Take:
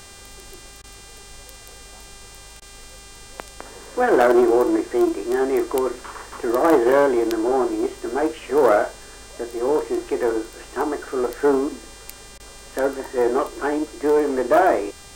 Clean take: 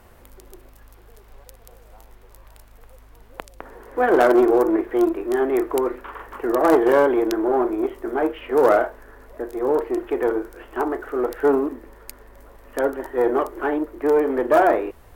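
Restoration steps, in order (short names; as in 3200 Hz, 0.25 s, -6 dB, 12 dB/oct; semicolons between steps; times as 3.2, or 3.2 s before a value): de-hum 398.5 Hz, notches 24; interpolate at 0.82/2.6/12.38, 17 ms; expander -34 dBFS, range -21 dB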